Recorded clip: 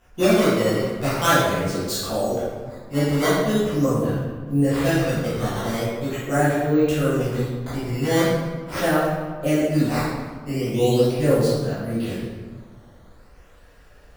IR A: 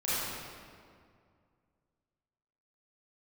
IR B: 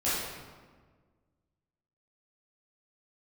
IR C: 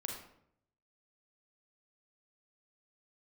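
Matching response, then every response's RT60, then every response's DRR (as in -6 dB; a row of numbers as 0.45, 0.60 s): B; 2.2, 1.5, 0.70 s; -12.0, -11.5, 0.5 dB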